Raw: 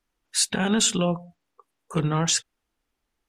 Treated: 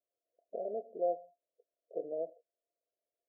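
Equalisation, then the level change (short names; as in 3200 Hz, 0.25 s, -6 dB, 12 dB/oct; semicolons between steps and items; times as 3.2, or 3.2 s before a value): HPF 540 Hz 24 dB/oct; Chebyshev low-pass 700 Hz, order 10; 0.0 dB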